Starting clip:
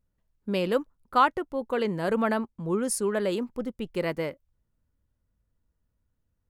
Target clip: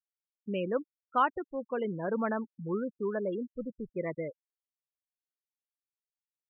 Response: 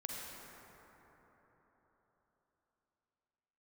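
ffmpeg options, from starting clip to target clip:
-af "afftfilt=real='re*gte(hypot(re,im),0.0562)':imag='im*gte(hypot(re,im),0.0562)':win_size=1024:overlap=0.75,aresample=8000,aresample=44100,volume=-5.5dB"

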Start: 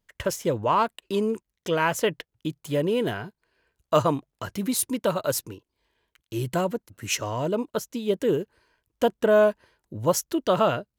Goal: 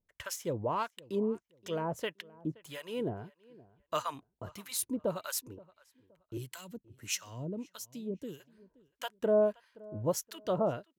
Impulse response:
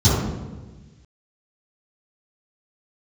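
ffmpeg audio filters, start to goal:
-filter_complex "[0:a]asettb=1/sr,asplit=3[link_01][link_02][link_03];[link_01]atrim=end=6.374[link_04];[link_02]atrim=start=6.37:end=8.4,asetpts=PTS-STARTPTS,afade=type=in:duration=0.004:curve=qsin,afade=type=out:start_time=2.026:duration=0.004:curve=qsin,acrossover=split=270|3000[link_05][link_06][link_07];[link_06]acompressor=threshold=-37dB:ratio=6[link_08];[link_05][link_08][link_07]amix=inputs=3:normalize=0[link_09];[link_03]atrim=start=8.396[link_10];[link_04][link_09]acrossfade=duration=0.004:curve1=hsin:curve2=qsin[link_11];[link_11][link_10]acrossfade=duration=0.004:curve1=qsin:curve2=hsin,acrossover=split=880[link_12][link_13];[link_12]aeval=exprs='val(0)*(1-1/2+1/2*cos(2*PI*1.6*n/s))':channel_layout=same[link_14];[link_13]aeval=exprs='val(0)*(1-1/2-1/2*cos(2*PI*1.6*n/s))':channel_layout=same[link_15];[link_14][link_15]amix=inputs=2:normalize=0,asplit=2[link_16][link_17];[link_17]adelay=523,lowpass=frequency=2300:poles=1,volume=-22dB,asplit=2[link_18][link_19];[link_19]adelay=523,lowpass=frequency=2300:poles=1,volume=0.29[link_20];[link_16][link_18][link_20]amix=inputs=3:normalize=0,volume=-5.5dB"

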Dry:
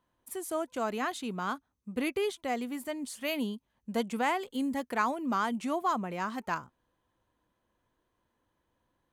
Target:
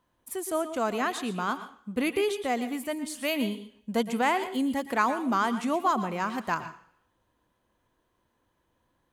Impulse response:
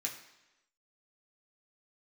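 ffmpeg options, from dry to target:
-filter_complex "[0:a]asplit=2[link_01][link_02];[1:a]atrim=start_sample=2205,asetrate=61740,aresample=44100,adelay=114[link_03];[link_02][link_03]afir=irnorm=-1:irlink=0,volume=-8dB[link_04];[link_01][link_04]amix=inputs=2:normalize=0,volume=4dB"

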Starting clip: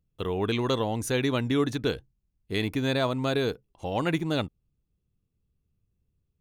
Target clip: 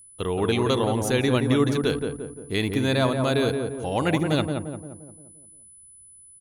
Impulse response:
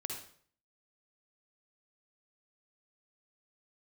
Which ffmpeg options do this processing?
-filter_complex "[0:a]asplit=2[link_01][link_02];[link_02]adelay=174,lowpass=frequency=1200:poles=1,volume=-4dB,asplit=2[link_03][link_04];[link_04]adelay=174,lowpass=frequency=1200:poles=1,volume=0.52,asplit=2[link_05][link_06];[link_06]adelay=174,lowpass=frequency=1200:poles=1,volume=0.52,asplit=2[link_07][link_08];[link_08]adelay=174,lowpass=frequency=1200:poles=1,volume=0.52,asplit=2[link_09][link_10];[link_10]adelay=174,lowpass=frequency=1200:poles=1,volume=0.52,asplit=2[link_11][link_12];[link_12]adelay=174,lowpass=frequency=1200:poles=1,volume=0.52,asplit=2[link_13][link_14];[link_14]adelay=174,lowpass=frequency=1200:poles=1,volume=0.52[link_15];[link_01][link_03][link_05][link_07][link_09][link_11][link_13][link_15]amix=inputs=8:normalize=0,aeval=exprs='val(0)+0.00316*sin(2*PI*10000*n/s)':channel_layout=same,volume=3dB"

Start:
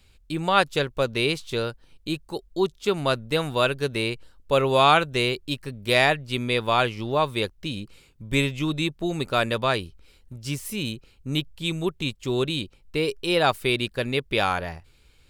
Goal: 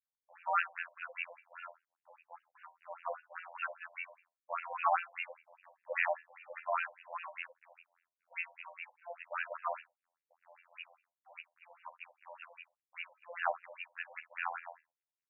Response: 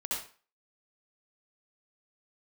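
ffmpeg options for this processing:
-filter_complex "[0:a]afftfilt=real='hypot(re,im)*cos(PI*b)':imag='0':win_size=2048:overlap=0.75,aeval=exprs='sgn(val(0))*max(abs(val(0))-0.00668,0)':channel_layout=same,asplit=2[link_01][link_02];[link_02]adelay=61,lowpass=frequency=4200:poles=1,volume=-15.5dB,asplit=2[link_03][link_04];[link_04]adelay=61,lowpass=frequency=4200:poles=1,volume=0.23[link_05];[link_01][link_03][link_05]amix=inputs=3:normalize=0,afftfilt=real='re*between(b*sr/1024,700*pow(2100/700,0.5+0.5*sin(2*PI*5*pts/sr))/1.41,700*pow(2100/700,0.5+0.5*sin(2*PI*5*pts/sr))*1.41)':imag='im*between(b*sr/1024,700*pow(2100/700,0.5+0.5*sin(2*PI*5*pts/sr))/1.41,700*pow(2100/700,0.5+0.5*sin(2*PI*5*pts/sr))*1.41)':win_size=1024:overlap=0.75,volume=-5dB"

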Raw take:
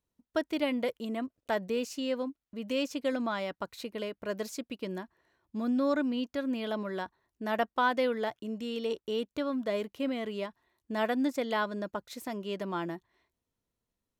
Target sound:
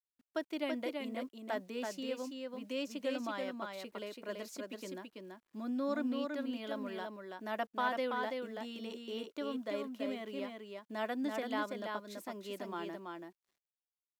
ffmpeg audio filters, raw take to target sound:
ffmpeg -i in.wav -af "highpass=frequency=210:width=0.5412,highpass=frequency=210:width=1.3066,bandreject=frequency=460:width=12,acrusher=bits=10:mix=0:aa=0.000001,aecho=1:1:332:0.631,volume=-7dB" out.wav

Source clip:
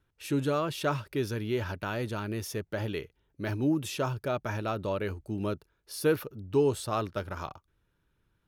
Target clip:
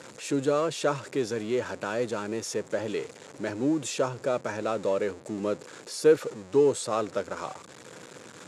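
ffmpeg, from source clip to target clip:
ffmpeg -i in.wav -af "aeval=exprs='val(0)+0.5*0.0126*sgn(val(0))':channel_layout=same,highpass=frequency=150:width=0.5412,highpass=frequency=150:width=1.3066,equalizer=frequency=170:width_type=q:width=4:gain=-4,equalizer=frequency=500:width_type=q:width=4:gain=9,equalizer=frequency=3000:width_type=q:width=4:gain=-4,equalizer=frequency=7200:width_type=q:width=4:gain=9,lowpass=frequency=9300:width=0.5412,lowpass=frequency=9300:width=1.3066" out.wav

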